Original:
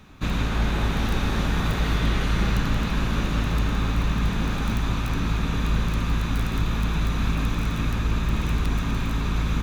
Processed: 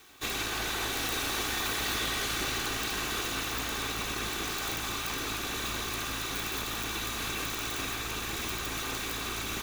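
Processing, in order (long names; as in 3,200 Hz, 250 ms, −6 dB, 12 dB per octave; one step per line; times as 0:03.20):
lower of the sound and its delayed copy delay 2.6 ms
RIAA equalisation recording
wave folding −16 dBFS
level −3.5 dB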